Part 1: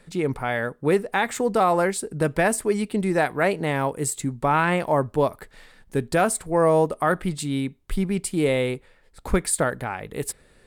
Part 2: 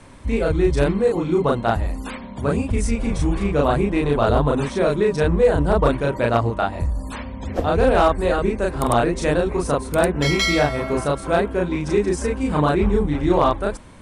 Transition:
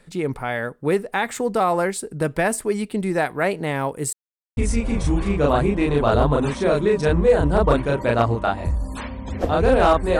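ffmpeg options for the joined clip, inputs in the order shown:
ffmpeg -i cue0.wav -i cue1.wav -filter_complex "[0:a]apad=whole_dur=10.19,atrim=end=10.19,asplit=2[link_01][link_02];[link_01]atrim=end=4.13,asetpts=PTS-STARTPTS,afade=type=out:start_time=4.126:duration=0.004:curve=hsin[link_03];[link_02]atrim=start=4.13:end=4.57,asetpts=PTS-STARTPTS,volume=0[link_04];[1:a]atrim=start=2.72:end=8.34,asetpts=PTS-STARTPTS,afade=type=in:duration=0.004:curve=hsin[link_05];[link_03][link_04][link_05]concat=n=3:v=0:a=1" out.wav

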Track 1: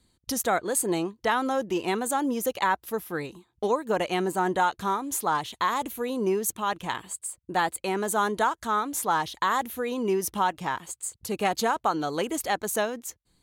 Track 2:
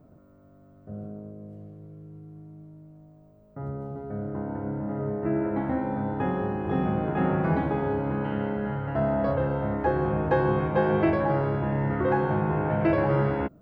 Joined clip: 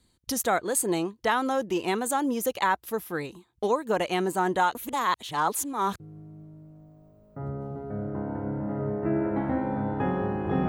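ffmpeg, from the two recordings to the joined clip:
ffmpeg -i cue0.wav -i cue1.wav -filter_complex "[0:a]apad=whole_dur=10.68,atrim=end=10.68,asplit=2[link_01][link_02];[link_01]atrim=end=4.752[link_03];[link_02]atrim=start=4.748:end=6.002,asetpts=PTS-STARTPTS,areverse[link_04];[1:a]atrim=start=2.198:end=6.88[link_05];[link_03][link_04]acrossfade=duration=0.004:curve1=hsin:curve2=hsin[link_06];[link_06][link_05]acrossfade=duration=0.004:curve1=hsin:curve2=hsin" out.wav

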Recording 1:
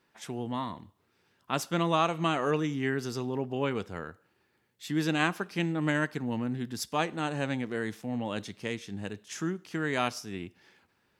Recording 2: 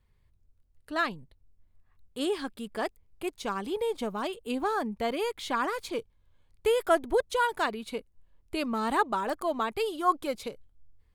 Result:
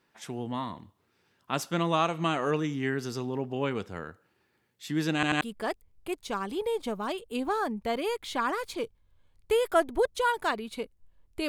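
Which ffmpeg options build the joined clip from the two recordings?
ffmpeg -i cue0.wav -i cue1.wav -filter_complex "[0:a]apad=whole_dur=11.48,atrim=end=11.48,asplit=3[link_01][link_02][link_03];[link_01]atrim=end=5.232[link_04];[link_02]atrim=start=5.138:end=5.232[link_05];[link_03]atrim=start=5.138:end=5.232[link_06];[1:a]atrim=start=2.558:end=8.63[link_07];[link_04][link_05]acrossfade=duration=0.004:curve1=hsin:curve2=hsin[link_08];[link_08][link_06]acrossfade=duration=0.004:curve1=hsin:curve2=hsin[link_09];[link_09][link_07]acrossfade=duration=0.004:curve1=hsin:curve2=hsin" out.wav

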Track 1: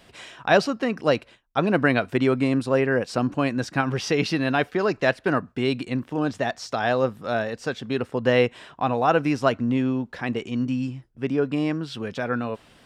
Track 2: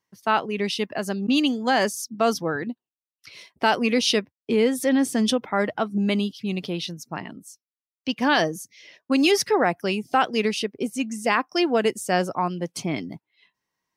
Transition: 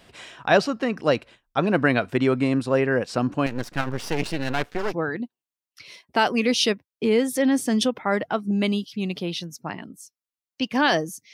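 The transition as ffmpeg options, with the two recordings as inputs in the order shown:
ffmpeg -i cue0.wav -i cue1.wav -filter_complex "[0:a]asettb=1/sr,asplit=3[link_01][link_02][link_03];[link_01]atrim=end=3.464[link_04];[link_02]atrim=start=3.46:end=4.95,asetpts=PTS-STARTPTS,afade=type=in:duration=0.004:curve=qsin,afade=type=out:start_time=1.486:duration=0.004:curve=qsin,aeval=exprs='max(val(0),0)':channel_layout=same[link_05];[link_03]atrim=start=4.946[link_06];[link_04][link_05]acrossfade=duration=0.004:curve1=hsin:curve2=qsin[link_07];[link_07][link_06]acrossfade=duration=0.004:curve1=qsin:curve2=hsin,apad=whole_dur=11.33,atrim=end=11.33,atrim=end=4.95,asetpts=PTS-STARTPTS[link_08];[1:a]atrim=start=2.36:end=8.8,asetpts=PTS-STARTPTS[link_09];[link_08][link_09]acrossfade=duration=0.06:curve1=tri:curve2=tri" out.wav

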